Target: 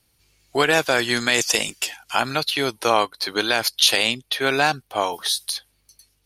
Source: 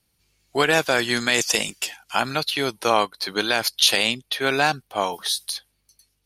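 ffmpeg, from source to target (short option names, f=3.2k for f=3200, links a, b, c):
-filter_complex "[0:a]equalizer=f=190:t=o:w=0.25:g=-8,asplit=2[a][b];[b]acompressor=threshold=-34dB:ratio=6,volume=-2dB[c];[a][c]amix=inputs=2:normalize=0"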